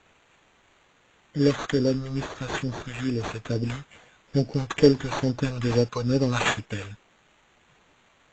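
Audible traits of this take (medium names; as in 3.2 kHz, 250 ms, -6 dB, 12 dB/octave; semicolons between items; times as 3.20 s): a quantiser's noise floor 10-bit, dither triangular; phasing stages 2, 2.3 Hz, lowest notch 270–1600 Hz; aliases and images of a low sample rate 5.1 kHz, jitter 0%; AAC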